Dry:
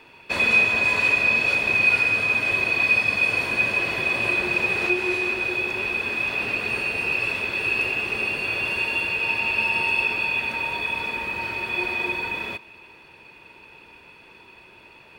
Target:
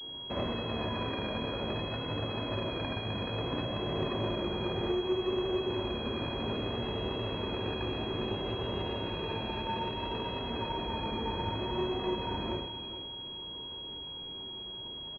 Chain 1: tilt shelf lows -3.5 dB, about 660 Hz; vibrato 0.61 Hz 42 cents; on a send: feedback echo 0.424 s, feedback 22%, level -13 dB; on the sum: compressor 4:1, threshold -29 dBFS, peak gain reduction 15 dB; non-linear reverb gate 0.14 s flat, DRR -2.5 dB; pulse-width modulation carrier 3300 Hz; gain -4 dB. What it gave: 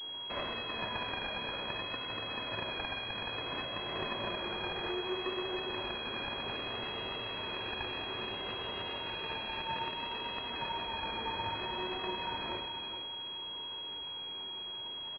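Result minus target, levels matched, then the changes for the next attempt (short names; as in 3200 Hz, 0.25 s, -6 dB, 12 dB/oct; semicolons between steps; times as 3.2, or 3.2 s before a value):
500 Hz band -5.0 dB
change: tilt shelf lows +6.5 dB, about 660 Hz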